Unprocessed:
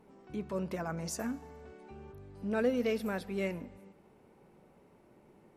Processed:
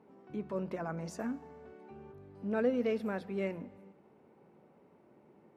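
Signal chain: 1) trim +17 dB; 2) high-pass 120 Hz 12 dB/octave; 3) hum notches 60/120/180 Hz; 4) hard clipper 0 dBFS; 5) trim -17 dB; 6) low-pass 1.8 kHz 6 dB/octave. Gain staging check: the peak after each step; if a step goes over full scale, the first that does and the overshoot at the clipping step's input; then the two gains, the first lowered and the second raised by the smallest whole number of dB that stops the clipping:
-2.5 dBFS, -2.0 dBFS, -2.0 dBFS, -2.0 dBFS, -19.0 dBFS, -19.5 dBFS; nothing clips

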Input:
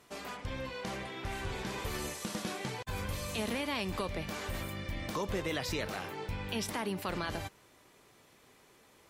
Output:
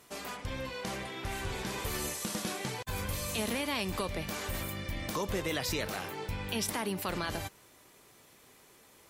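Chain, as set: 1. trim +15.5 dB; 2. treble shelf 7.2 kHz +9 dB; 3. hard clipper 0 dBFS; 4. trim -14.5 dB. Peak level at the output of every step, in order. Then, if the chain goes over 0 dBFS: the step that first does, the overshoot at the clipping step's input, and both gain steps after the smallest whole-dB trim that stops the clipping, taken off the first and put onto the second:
-7.0 dBFS, -5.5 dBFS, -5.5 dBFS, -20.0 dBFS; nothing clips

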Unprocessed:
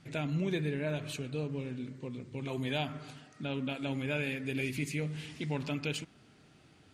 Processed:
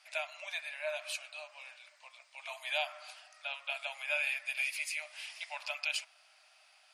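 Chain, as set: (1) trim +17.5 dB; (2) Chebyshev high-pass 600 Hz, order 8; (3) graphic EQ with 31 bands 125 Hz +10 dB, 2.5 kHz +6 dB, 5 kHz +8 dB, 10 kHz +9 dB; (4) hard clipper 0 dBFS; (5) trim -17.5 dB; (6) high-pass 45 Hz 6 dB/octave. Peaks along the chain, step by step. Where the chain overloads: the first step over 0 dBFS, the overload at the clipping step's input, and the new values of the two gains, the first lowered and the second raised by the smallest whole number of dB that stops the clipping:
-3.5 dBFS, -5.5 dBFS, -3.0 dBFS, -3.0 dBFS, -20.5 dBFS, -20.5 dBFS; nothing clips

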